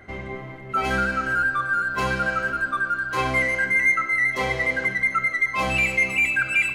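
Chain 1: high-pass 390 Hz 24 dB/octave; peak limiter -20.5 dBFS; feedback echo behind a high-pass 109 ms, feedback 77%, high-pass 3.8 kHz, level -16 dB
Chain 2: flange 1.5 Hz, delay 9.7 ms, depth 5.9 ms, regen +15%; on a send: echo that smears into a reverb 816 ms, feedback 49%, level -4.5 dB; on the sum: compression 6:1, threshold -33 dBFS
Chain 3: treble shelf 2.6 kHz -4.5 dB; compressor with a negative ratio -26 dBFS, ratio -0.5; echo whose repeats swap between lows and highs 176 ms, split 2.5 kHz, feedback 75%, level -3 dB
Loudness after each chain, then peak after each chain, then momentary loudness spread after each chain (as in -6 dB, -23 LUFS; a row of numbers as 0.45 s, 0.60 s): -26.5 LUFS, -34.0 LUFS, -24.5 LUFS; -20.0 dBFS, -23.0 dBFS, -11.0 dBFS; 4 LU, 3 LU, 4 LU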